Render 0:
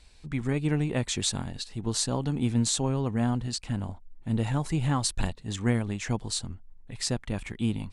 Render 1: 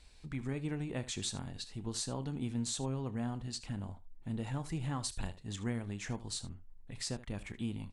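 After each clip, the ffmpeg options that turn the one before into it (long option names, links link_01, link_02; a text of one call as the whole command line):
ffmpeg -i in.wav -af "acompressor=threshold=-41dB:ratio=1.5,aecho=1:1:30|76:0.168|0.15,volume=-4dB" out.wav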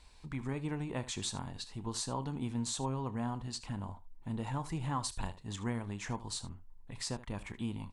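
ffmpeg -i in.wav -af "equalizer=frequency=980:width_type=o:width=0.53:gain=10" out.wav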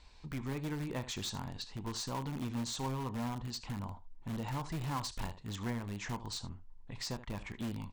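ffmpeg -i in.wav -filter_complex "[0:a]lowpass=frequency=6800:width=0.5412,lowpass=frequency=6800:width=1.3066,asplit=2[link_01][link_02];[link_02]aeval=exprs='(mod(42.2*val(0)+1,2)-1)/42.2':channel_layout=same,volume=-8.5dB[link_03];[link_01][link_03]amix=inputs=2:normalize=0,volume=-2dB" out.wav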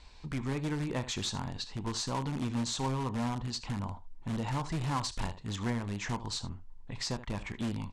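ffmpeg -i in.wav -af "lowpass=frequency=10000:width=0.5412,lowpass=frequency=10000:width=1.3066,volume=4.5dB" out.wav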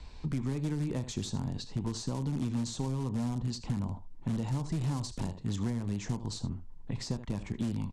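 ffmpeg -i in.wav -filter_complex "[0:a]acrossover=split=110|690|4400[link_01][link_02][link_03][link_04];[link_01]acompressor=threshold=-55dB:ratio=4[link_05];[link_02]acompressor=threshold=-41dB:ratio=4[link_06];[link_03]acompressor=threshold=-53dB:ratio=4[link_07];[link_04]acompressor=threshold=-41dB:ratio=4[link_08];[link_05][link_06][link_07][link_08]amix=inputs=4:normalize=0,lowshelf=frequency=450:gain=11.5,aresample=32000,aresample=44100" out.wav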